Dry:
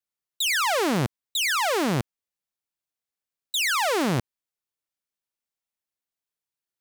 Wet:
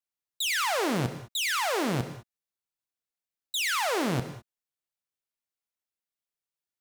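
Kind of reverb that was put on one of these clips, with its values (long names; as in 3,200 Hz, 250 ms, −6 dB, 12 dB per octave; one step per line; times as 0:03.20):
reverb whose tail is shaped and stops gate 230 ms flat, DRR 9 dB
level −4.5 dB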